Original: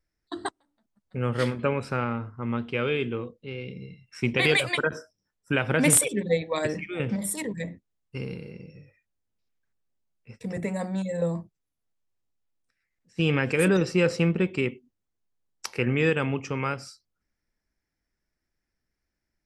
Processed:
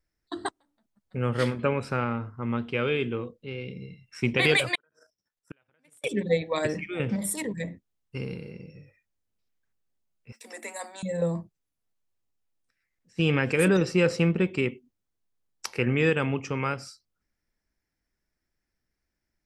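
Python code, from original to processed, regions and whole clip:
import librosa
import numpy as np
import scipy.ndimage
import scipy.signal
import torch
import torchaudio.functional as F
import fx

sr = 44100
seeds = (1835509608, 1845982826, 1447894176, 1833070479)

y = fx.chain(x, sr, fx.level_steps(step_db=10),
    fx.low_shelf(hz=340.0, db=-9.5),
    fx.gate_flip(shuts_db=-26.0, range_db=-37), at=(4.75, 6.04))
y = fx.chain(y, sr, fx.cheby_ripple_highpass(hz=220.0, ripple_db=6),
    fx.tilt_eq(slope=4.5), at=(10.32, 11.03))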